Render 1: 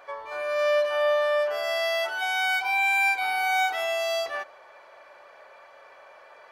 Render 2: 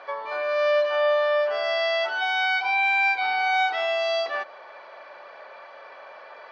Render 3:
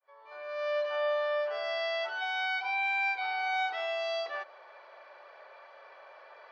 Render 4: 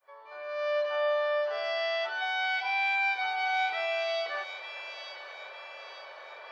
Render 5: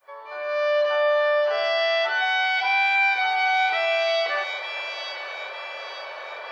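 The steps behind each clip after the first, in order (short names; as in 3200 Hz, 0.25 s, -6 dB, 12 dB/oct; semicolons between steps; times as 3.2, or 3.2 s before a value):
Chebyshev band-pass 190–4700 Hz, order 3; in parallel at +1 dB: compressor, threshold -35 dBFS, peak gain reduction 14 dB
opening faded in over 0.89 s; HPF 320 Hz 24 dB/oct; gain -8.5 dB
reverse; upward compressor, threshold -43 dBFS; reverse; thin delay 0.897 s, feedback 53%, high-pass 2700 Hz, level -5.5 dB; gain +2 dB
in parallel at +1 dB: limiter -26.5 dBFS, peak gain reduction 8.5 dB; on the sum: spring tank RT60 3.4 s, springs 58 ms, chirp 65 ms, DRR 14 dB; gain +3.5 dB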